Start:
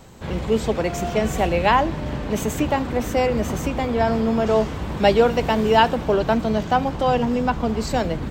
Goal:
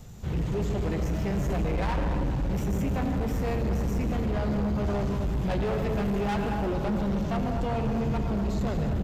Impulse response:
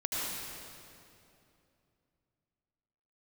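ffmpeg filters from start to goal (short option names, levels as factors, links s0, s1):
-filter_complex "[0:a]asetrate=40517,aresample=44100,flanger=delay=1.5:depth=2.7:regen=-74:speed=0.35:shape=sinusoidal,acrossover=split=2700[s0][s1];[s1]acompressor=threshold=0.00501:ratio=4:attack=1:release=60[s2];[s0][s2]amix=inputs=2:normalize=0,highshelf=f=4900:g=8,asplit=2[s3][s4];[1:a]atrim=start_sample=2205,afade=t=out:st=0.37:d=0.01,atrim=end_sample=16758[s5];[s4][s5]afir=irnorm=-1:irlink=0,volume=0.422[s6];[s3][s6]amix=inputs=2:normalize=0,asoftclip=type=tanh:threshold=0.126,bass=f=250:g=12,treble=f=4000:g=1,asplit=2[s7][s8];[s8]adelay=234,lowpass=f=1100:p=1,volume=0.447,asplit=2[s9][s10];[s10]adelay=234,lowpass=f=1100:p=1,volume=0.55,asplit=2[s11][s12];[s12]adelay=234,lowpass=f=1100:p=1,volume=0.55,asplit=2[s13][s14];[s14]adelay=234,lowpass=f=1100:p=1,volume=0.55,asplit=2[s15][s16];[s16]adelay=234,lowpass=f=1100:p=1,volume=0.55,asplit=2[s17][s18];[s18]adelay=234,lowpass=f=1100:p=1,volume=0.55,asplit=2[s19][s20];[s20]adelay=234,lowpass=f=1100:p=1,volume=0.55[s21];[s7][s9][s11][s13][s15][s17][s19][s21]amix=inputs=8:normalize=0,volume=6.68,asoftclip=hard,volume=0.15,volume=0.422"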